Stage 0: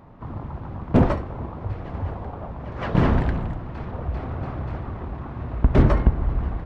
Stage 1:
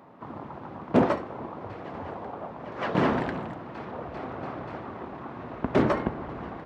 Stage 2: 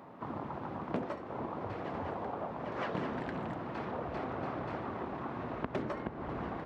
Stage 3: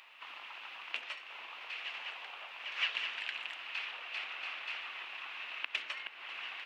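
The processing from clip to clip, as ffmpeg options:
-af "highpass=250"
-af "acompressor=threshold=0.0224:ratio=10"
-af "highpass=f=2700:t=q:w=4.9,volume=2.11"

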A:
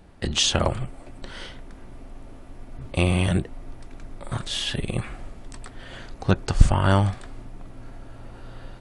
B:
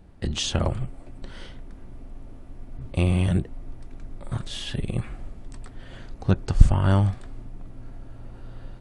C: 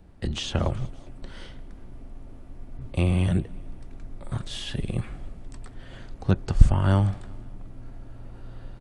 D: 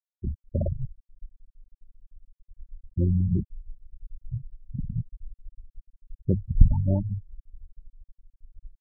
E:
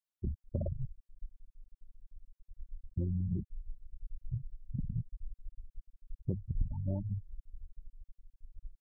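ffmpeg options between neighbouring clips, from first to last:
-af "lowshelf=f=370:g=8.5,volume=0.447"
-filter_complex "[0:a]aecho=1:1:188|376|564:0.0631|0.0334|0.0177,acrossover=split=260|3400[s0][s1][s2];[s2]alimiter=level_in=1.68:limit=0.0631:level=0:latency=1:release=422,volume=0.596[s3];[s0][s1][s3]amix=inputs=3:normalize=0,volume=0.891"
-af "bandreject=f=50:t=h:w=6,bandreject=f=100:t=h:w=6,bandreject=f=150:t=h:w=6,bandreject=f=200:t=h:w=6,afftfilt=real='re*gte(hypot(re,im),0.2)':imag='im*gte(hypot(re,im),0.2)':win_size=1024:overlap=0.75"
-af "acompressor=threshold=0.0355:ratio=4,volume=0.75"

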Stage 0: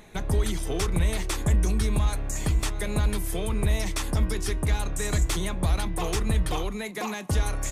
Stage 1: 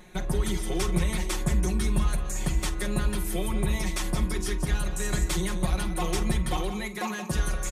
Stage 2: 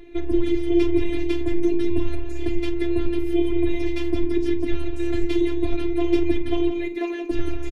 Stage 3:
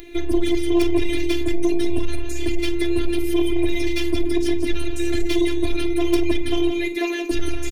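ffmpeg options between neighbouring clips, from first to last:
-filter_complex "[0:a]aecho=1:1:5.5:0.89,asplit=2[s0][s1];[s1]aecho=0:1:49|176:0.178|0.316[s2];[s0][s2]amix=inputs=2:normalize=0,volume=0.668"
-af "afftfilt=real='hypot(re,im)*cos(PI*b)':imag='0':win_size=512:overlap=0.75,firequalizer=gain_entry='entry(110,0);entry(150,-17);entry(290,8);entry(460,1);entry(880,-15);entry(1300,-14);entry(2300,-3);entry(7700,-27)':delay=0.05:min_phase=1,volume=2.82"
-af "crystalizer=i=5.5:c=0,aeval=exprs='0.668*(cos(1*acos(clip(val(0)/0.668,-1,1)))-cos(1*PI/2))+0.15*(cos(3*acos(clip(val(0)/0.668,-1,1)))-cos(3*PI/2))+0.168*(cos(5*acos(clip(val(0)/0.668,-1,1)))-cos(5*PI/2))+0.0237*(cos(7*acos(clip(val(0)/0.668,-1,1)))-cos(7*PI/2))':c=same"

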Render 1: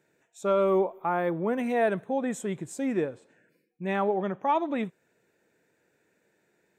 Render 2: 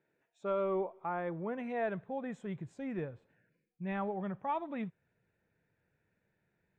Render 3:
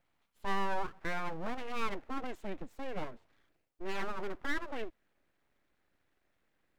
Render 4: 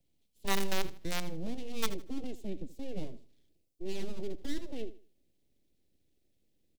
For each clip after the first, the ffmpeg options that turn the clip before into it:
-af "lowpass=3000,asubboost=boost=9.5:cutoff=110,volume=0.376"
-af "aeval=exprs='abs(val(0))':c=same,volume=1.41"
-filter_complex "[0:a]acrossover=split=140|510|3100[s0][s1][s2][s3];[s2]acrusher=bits=4:mix=0:aa=0.000001[s4];[s0][s1][s4][s3]amix=inputs=4:normalize=0,aecho=1:1:79|158|237:0.158|0.0444|0.0124,volume=1.58"

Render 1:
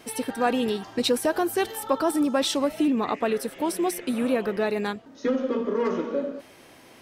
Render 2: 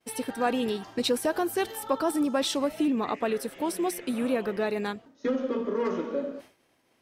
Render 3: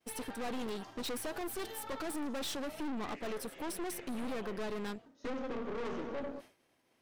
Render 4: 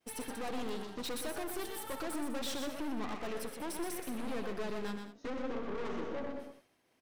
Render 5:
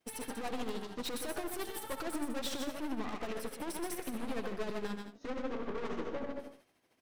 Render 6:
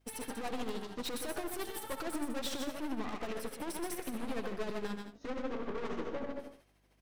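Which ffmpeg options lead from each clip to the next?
-af "agate=range=0.0224:threshold=0.01:ratio=3:detection=peak,volume=0.708"
-af "aeval=exprs='(tanh(56.2*val(0)+0.7)-tanh(0.7))/56.2':c=same,volume=0.841"
-af "aecho=1:1:64|123|200:0.168|0.501|0.188,volume=0.891"
-af "tremolo=f=13:d=0.53,volume=1.33"
-af "aeval=exprs='val(0)+0.000282*(sin(2*PI*50*n/s)+sin(2*PI*2*50*n/s)/2+sin(2*PI*3*50*n/s)/3+sin(2*PI*4*50*n/s)/4+sin(2*PI*5*50*n/s)/5)':c=same"

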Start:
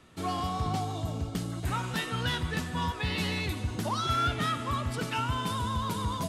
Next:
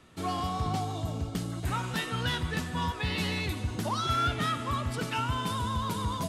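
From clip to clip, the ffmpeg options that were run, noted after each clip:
-af anull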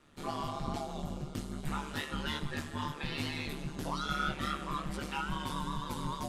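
-af "flanger=delay=15:depth=4.3:speed=2.4,aeval=exprs='val(0)*sin(2*PI*73*n/s)':c=same"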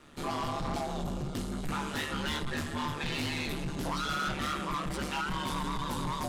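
-af "bandreject=f=50:t=h:w=6,bandreject=f=100:t=h:w=6,bandreject=f=150:t=h:w=6,bandreject=f=200:t=h:w=6,asoftclip=type=tanh:threshold=0.015,volume=2.51"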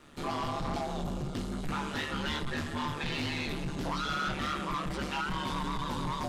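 -filter_complex "[0:a]acrossover=split=6200[s0][s1];[s1]acompressor=threshold=0.00178:ratio=4:attack=1:release=60[s2];[s0][s2]amix=inputs=2:normalize=0"

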